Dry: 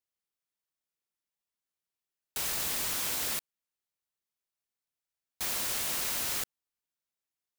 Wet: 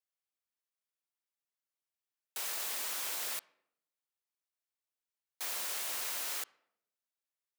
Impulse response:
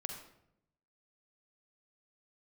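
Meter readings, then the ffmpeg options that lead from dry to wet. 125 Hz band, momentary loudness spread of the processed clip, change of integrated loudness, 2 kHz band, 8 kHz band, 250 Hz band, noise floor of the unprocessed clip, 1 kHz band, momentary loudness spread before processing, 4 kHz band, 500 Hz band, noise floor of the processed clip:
below −20 dB, 6 LU, −5.0 dB, −4.5 dB, −5.0 dB, −13.5 dB, below −85 dBFS, −4.0 dB, 6 LU, −5.0 dB, −6.0 dB, below −85 dBFS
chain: -filter_complex "[0:a]highpass=460,asplit=2[link_01][link_02];[1:a]atrim=start_sample=2205,lowpass=3400[link_03];[link_02][link_03]afir=irnorm=-1:irlink=0,volume=-14dB[link_04];[link_01][link_04]amix=inputs=2:normalize=0,volume=-5dB"

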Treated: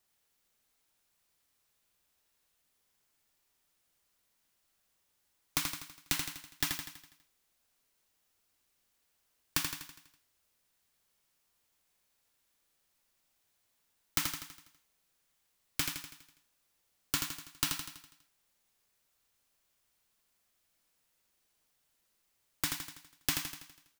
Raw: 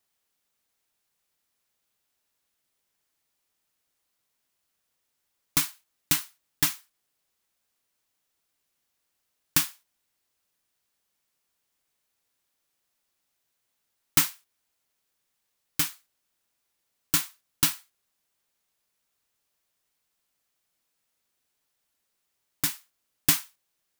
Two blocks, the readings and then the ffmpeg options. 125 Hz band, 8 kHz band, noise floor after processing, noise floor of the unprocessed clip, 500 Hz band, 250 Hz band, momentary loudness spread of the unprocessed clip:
−7.5 dB, −8.5 dB, −77 dBFS, −79 dBFS, −3.5 dB, −7.0 dB, 11 LU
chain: -filter_complex "[0:a]lowshelf=frequency=70:gain=7,acrossover=split=280|6100[link_01][link_02][link_03];[link_01]acompressor=threshold=-43dB:ratio=4[link_04];[link_02]acompressor=threshold=-33dB:ratio=4[link_05];[link_03]acompressor=threshold=-36dB:ratio=4[link_06];[link_04][link_05][link_06]amix=inputs=3:normalize=0,aecho=1:1:82|164|246|328|410|492|574:0.531|0.276|0.144|0.0746|0.0388|0.0202|0.0105"

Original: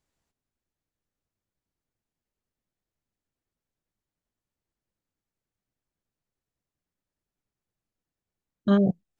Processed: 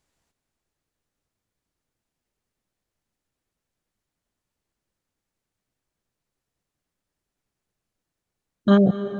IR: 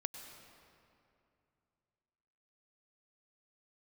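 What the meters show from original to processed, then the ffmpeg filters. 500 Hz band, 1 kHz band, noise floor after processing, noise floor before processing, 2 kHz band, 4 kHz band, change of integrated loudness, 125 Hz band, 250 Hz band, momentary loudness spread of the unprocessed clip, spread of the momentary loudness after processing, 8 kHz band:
+6.0 dB, +6.5 dB, −85 dBFS, below −85 dBFS, +7.0 dB, +7.0 dB, +5.0 dB, +4.5 dB, +4.5 dB, 7 LU, 7 LU, can't be measured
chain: -filter_complex "[0:a]asplit=2[link_01][link_02];[1:a]atrim=start_sample=2205,asetrate=22491,aresample=44100,lowshelf=frequency=320:gain=-6[link_03];[link_02][link_03]afir=irnorm=-1:irlink=0,volume=0dB[link_04];[link_01][link_04]amix=inputs=2:normalize=0"

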